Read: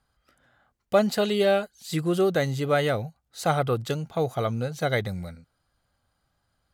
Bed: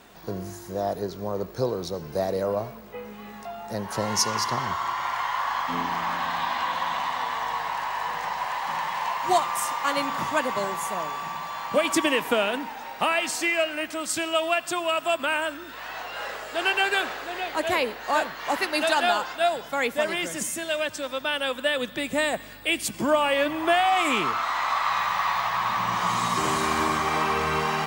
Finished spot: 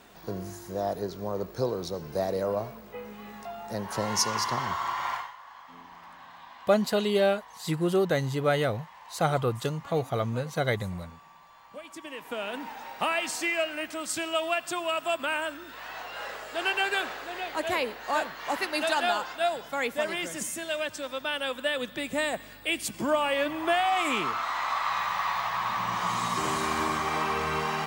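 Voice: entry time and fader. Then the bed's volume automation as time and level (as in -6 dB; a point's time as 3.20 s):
5.75 s, -2.0 dB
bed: 5.14 s -2.5 dB
5.36 s -21 dB
11.97 s -21 dB
12.68 s -4 dB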